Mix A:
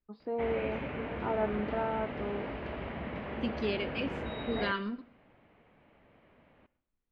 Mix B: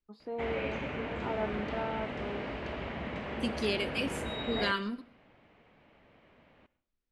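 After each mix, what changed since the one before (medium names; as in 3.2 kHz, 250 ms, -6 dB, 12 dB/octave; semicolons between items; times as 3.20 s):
first voice -4.0 dB; master: remove distance through air 250 m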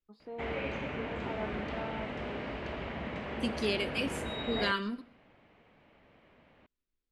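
first voice -5.0 dB; background: send off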